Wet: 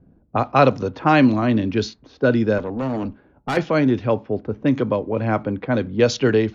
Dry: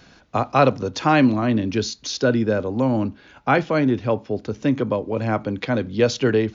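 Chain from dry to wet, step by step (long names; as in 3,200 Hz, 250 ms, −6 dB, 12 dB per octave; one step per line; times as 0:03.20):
low-pass that shuts in the quiet parts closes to 300 Hz, open at −14.5 dBFS
0:02.58–0:03.57: tube saturation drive 21 dB, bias 0.45
level +1.5 dB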